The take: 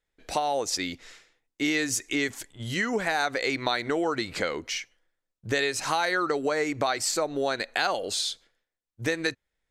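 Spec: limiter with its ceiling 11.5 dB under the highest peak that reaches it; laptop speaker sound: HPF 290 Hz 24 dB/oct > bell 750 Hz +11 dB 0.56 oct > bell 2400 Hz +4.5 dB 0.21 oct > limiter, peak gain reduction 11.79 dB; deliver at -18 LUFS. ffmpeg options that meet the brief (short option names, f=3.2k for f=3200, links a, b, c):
-af "alimiter=limit=-22dB:level=0:latency=1,highpass=f=290:w=0.5412,highpass=f=290:w=1.3066,equalizer=f=750:t=o:w=0.56:g=11,equalizer=f=2.4k:t=o:w=0.21:g=4.5,volume=18dB,alimiter=limit=-8.5dB:level=0:latency=1"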